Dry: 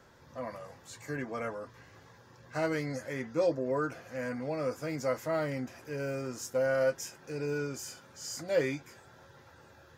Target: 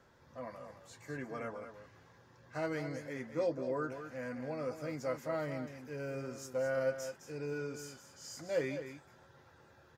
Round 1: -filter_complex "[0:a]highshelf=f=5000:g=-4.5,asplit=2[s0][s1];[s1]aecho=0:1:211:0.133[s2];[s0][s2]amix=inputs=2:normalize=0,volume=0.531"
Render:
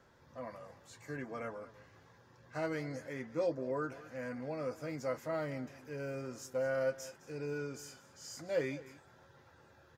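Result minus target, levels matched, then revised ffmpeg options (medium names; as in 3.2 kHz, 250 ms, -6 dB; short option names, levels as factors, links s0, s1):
echo-to-direct -8 dB
-filter_complex "[0:a]highshelf=f=5000:g=-4.5,asplit=2[s0][s1];[s1]aecho=0:1:211:0.335[s2];[s0][s2]amix=inputs=2:normalize=0,volume=0.531"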